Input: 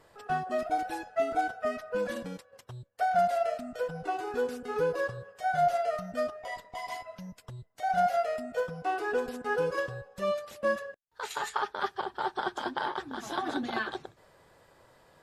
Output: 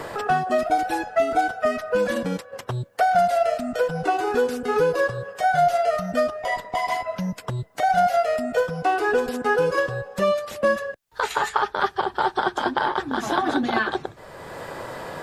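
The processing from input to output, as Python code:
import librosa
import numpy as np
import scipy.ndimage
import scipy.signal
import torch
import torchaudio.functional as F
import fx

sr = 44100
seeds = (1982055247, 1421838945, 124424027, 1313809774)

y = fx.band_squash(x, sr, depth_pct=70)
y = y * librosa.db_to_amplitude(9.0)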